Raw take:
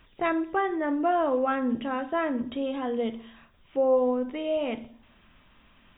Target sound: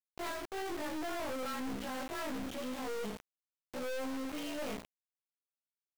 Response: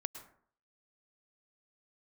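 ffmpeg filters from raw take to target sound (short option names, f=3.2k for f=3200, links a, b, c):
-af "afftfilt=real='re':imag='-im':win_size=2048:overlap=0.75,aeval=exprs='val(0)*gte(abs(val(0)),0.00794)':c=same,aeval=exprs='(tanh(158*val(0)+0.6)-tanh(0.6))/158':c=same,volume=6.5dB"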